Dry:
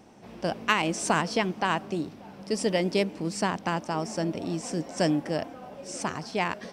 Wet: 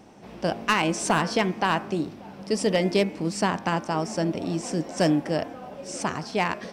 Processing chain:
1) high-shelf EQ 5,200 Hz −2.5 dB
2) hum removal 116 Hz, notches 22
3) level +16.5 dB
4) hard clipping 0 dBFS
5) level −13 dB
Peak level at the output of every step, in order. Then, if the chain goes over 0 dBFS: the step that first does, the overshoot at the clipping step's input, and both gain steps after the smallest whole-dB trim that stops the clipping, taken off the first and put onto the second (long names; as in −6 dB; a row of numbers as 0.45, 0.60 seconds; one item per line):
−8.0, −8.5, +8.0, 0.0, −13.0 dBFS
step 3, 8.0 dB
step 3 +8.5 dB, step 5 −5 dB